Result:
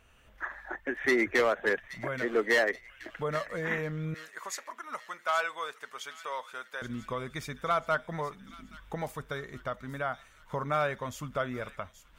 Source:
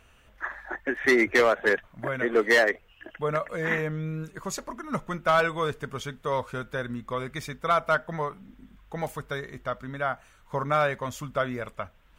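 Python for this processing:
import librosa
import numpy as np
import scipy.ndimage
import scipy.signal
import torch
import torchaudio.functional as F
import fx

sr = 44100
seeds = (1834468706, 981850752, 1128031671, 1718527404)

y = fx.recorder_agc(x, sr, target_db=-20.0, rise_db_per_s=11.0, max_gain_db=30)
y = fx.highpass(y, sr, hz=780.0, slope=12, at=(4.14, 6.82))
y = fx.echo_wet_highpass(y, sr, ms=826, feedback_pct=52, hz=2400.0, wet_db=-11.5)
y = y * librosa.db_to_amplitude(-5.0)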